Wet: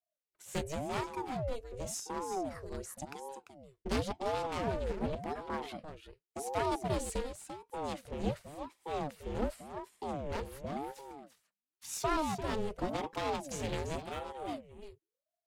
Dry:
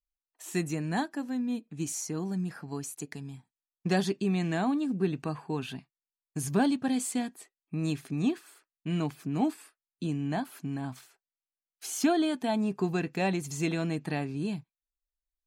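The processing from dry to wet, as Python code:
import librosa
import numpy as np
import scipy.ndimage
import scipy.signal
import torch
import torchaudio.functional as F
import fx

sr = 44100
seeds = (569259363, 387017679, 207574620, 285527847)

p1 = np.minimum(x, 2.0 * 10.0 ** (-28.5 / 20.0) - x)
p2 = fx.rotary(p1, sr, hz=5.0)
p3 = fx.fixed_phaser(p2, sr, hz=1300.0, stages=6, at=(14.03, 14.47), fade=0.02)
p4 = p3 + fx.echo_single(p3, sr, ms=343, db=-9.5, dry=0)
y = fx.ring_lfo(p4, sr, carrier_hz=440.0, swing_pct=55, hz=0.91)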